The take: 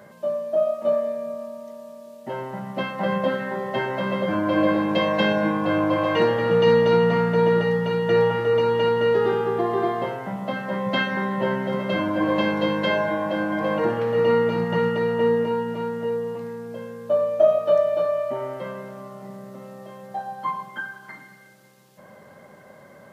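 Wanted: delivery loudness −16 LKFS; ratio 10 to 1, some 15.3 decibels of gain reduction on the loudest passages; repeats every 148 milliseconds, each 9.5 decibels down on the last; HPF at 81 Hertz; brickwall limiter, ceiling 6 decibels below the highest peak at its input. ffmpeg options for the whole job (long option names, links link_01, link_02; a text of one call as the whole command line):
ffmpeg -i in.wav -af "highpass=81,acompressor=threshold=-28dB:ratio=10,alimiter=level_in=1dB:limit=-24dB:level=0:latency=1,volume=-1dB,aecho=1:1:148|296|444|592:0.335|0.111|0.0365|0.012,volume=16dB" out.wav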